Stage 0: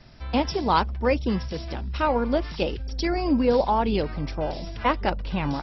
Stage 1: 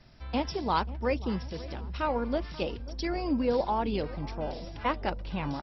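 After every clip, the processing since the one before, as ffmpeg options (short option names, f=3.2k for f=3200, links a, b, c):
-filter_complex "[0:a]asplit=2[a][b];[b]adelay=538,lowpass=f=1.4k:p=1,volume=-17dB,asplit=2[c][d];[d]adelay=538,lowpass=f=1.4k:p=1,volume=0.51,asplit=2[e][f];[f]adelay=538,lowpass=f=1.4k:p=1,volume=0.51,asplit=2[g][h];[h]adelay=538,lowpass=f=1.4k:p=1,volume=0.51[i];[a][c][e][g][i]amix=inputs=5:normalize=0,volume=-6.5dB"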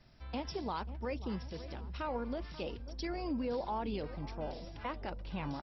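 -af "alimiter=limit=-22.5dB:level=0:latency=1:release=52,volume=-6dB"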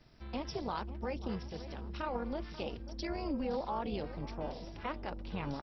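-af "tremolo=f=280:d=0.71,volume=3.5dB"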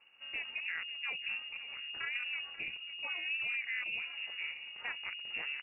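-af "lowpass=f=2.5k:t=q:w=0.5098,lowpass=f=2.5k:t=q:w=0.6013,lowpass=f=2.5k:t=q:w=0.9,lowpass=f=2.5k:t=q:w=2.563,afreqshift=-2900,volume=-1.5dB"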